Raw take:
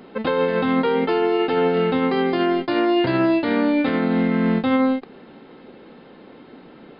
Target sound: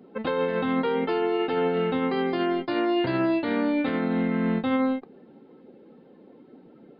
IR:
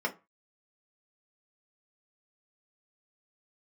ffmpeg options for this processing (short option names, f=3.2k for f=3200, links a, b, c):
-af "afftdn=nr=13:nf=-42,volume=-5.5dB"